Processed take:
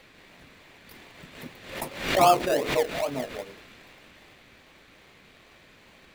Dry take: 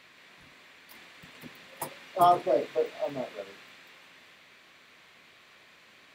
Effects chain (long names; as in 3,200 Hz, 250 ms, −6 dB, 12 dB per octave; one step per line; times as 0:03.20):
in parallel at −3 dB: sample-and-hold swept by an LFO 32×, swing 60% 2.5 Hz
on the sum: background raised ahead of every attack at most 85 dB per second